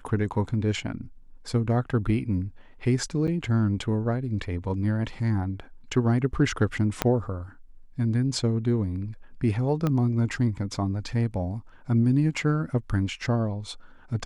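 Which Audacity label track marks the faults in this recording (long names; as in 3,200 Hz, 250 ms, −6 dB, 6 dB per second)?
3.270000	3.280000	drop-out 7.8 ms
7.020000	7.020000	click −7 dBFS
9.870000	9.870000	click −14 dBFS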